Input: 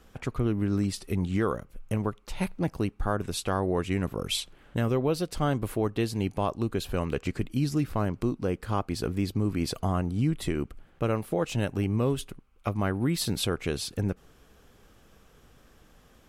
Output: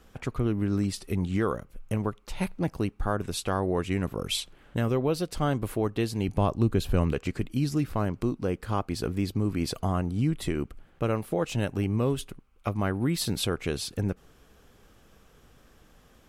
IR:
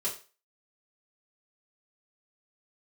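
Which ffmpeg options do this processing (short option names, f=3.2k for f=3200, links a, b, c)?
-filter_complex "[0:a]asettb=1/sr,asplit=3[a][b][c];[a]atrim=end=6.284[d];[b]atrim=start=6.28:end=7.13,asetpts=PTS-STARTPTS,afade=t=in:d=0.004:c=qsin,afade=t=out:st=0.846:d=0.004:c=qsin,lowshelf=f=250:g=9[e];[c]atrim=start=7.126[f];[d][e]acrossfade=d=0.004:c1=hsin:c2=qsin[g];[g][f]acrossfade=d=0.004:c1=qsin:c2=hsin"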